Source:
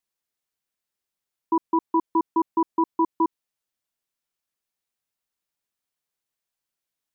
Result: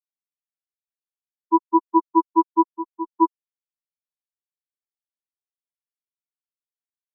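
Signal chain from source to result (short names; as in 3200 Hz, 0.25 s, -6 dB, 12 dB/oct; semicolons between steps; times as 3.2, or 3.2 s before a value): 2.72–3.17 tube stage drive 17 dB, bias 0.3; spectral expander 4:1; gain +7 dB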